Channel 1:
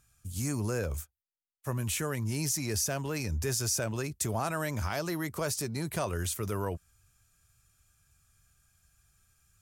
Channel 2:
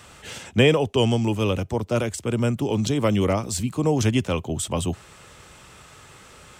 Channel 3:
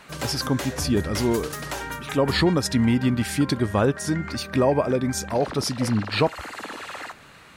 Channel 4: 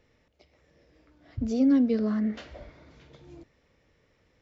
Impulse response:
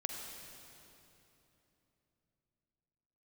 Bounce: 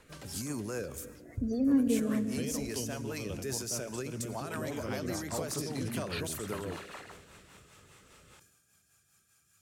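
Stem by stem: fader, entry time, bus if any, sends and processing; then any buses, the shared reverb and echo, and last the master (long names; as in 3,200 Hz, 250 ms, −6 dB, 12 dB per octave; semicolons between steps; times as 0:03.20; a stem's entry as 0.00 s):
+3.0 dB, 0.00 s, bus A, send −17.5 dB, high-pass filter 180 Hz 12 dB per octave
−9.0 dB, 1.80 s, bus A, no send, no processing
−10.0 dB, 0.00 s, no bus, no send, downward compressor, threshold −24 dBFS, peak gain reduction 9.5 dB; automatic ducking −23 dB, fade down 1.35 s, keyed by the fourth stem
+2.5 dB, 0.00 s, bus A, send −10.5 dB, spectral peaks only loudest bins 32
bus A: 0.0 dB, downward compressor, threshold −34 dBFS, peak gain reduction 17 dB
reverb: on, RT60 3.2 s, pre-delay 41 ms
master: rotating-speaker cabinet horn 5 Hz; level that may fall only so fast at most 78 dB per second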